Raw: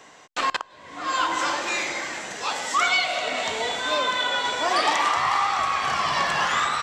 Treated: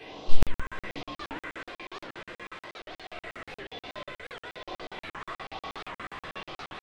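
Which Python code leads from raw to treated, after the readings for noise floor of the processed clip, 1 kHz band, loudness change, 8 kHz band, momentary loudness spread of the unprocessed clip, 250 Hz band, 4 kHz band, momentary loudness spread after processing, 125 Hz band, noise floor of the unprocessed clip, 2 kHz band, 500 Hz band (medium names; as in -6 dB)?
under -85 dBFS, -19.0 dB, -16.5 dB, -24.0 dB, 9 LU, -5.5 dB, -17.5 dB, 8 LU, +4.5 dB, -49 dBFS, -16.0 dB, -12.5 dB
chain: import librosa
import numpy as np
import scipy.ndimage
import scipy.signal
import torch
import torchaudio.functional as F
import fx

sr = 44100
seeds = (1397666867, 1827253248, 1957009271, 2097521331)

p1 = np.sign(x) * np.sqrt(np.mean(np.square(x)))
p2 = fx.bass_treble(p1, sr, bass_db=-12, treble_db=11)
p3 = fx.over_compress(p2, sr, threshold_db=-30.0, ratio=-0.5)
p4 = fx.phaser_stages(p3, sr, stages=4, low_hz=710.0, high_hz=1700.0, hz=1.1, feedback_pct=30)
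p5 = fx.spacing_loss(p4, sr, db_at_10k=41)
p6 = p5 + fx.echo_split(p5, sr, split_hz=340.0, low_ms=84, high_ms=663, feedback_pct=52, wet_db=-3.5, dry=0)
p7 = fx.room_shoebox(p6, sr, seeds[0], volume_m3=370.0, walls='furnished', distance_m=3.7)
p8 = fx.buffer_crackle(p7, sr, first_s=0.43, period_s=0.12, block=2048, kind='zero')
p9 = fx.record_warp(p8, sr, rpm=78.0, depth_cents=250.0)
y = F.gain(torch.from_numpy(p9), 3.0).numpy()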